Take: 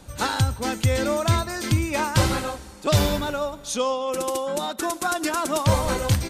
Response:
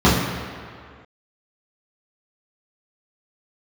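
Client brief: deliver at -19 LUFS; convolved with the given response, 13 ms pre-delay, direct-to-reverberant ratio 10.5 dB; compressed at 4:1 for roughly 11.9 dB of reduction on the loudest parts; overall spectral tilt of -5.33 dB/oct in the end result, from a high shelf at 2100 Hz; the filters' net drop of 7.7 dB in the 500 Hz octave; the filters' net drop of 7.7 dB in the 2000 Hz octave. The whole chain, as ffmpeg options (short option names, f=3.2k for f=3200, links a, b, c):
-filter_complex "[0:a]equalizer=f=500:t=o:g=-8.5,equalizer=f=2k:t=o:g=-7,highshelf=f=2.1k:g=-5.5,acompressor=threshold=-30dB:ratio=4,asplit=2[a][b];[1:a]atrim=start_sample=2205,adelay=13[c];[b][c]afir=irnorm=-1:irlink=0,volume=-35.5dB[d];[a][d]amix=inputs=2:normalize=0,volume=13dB"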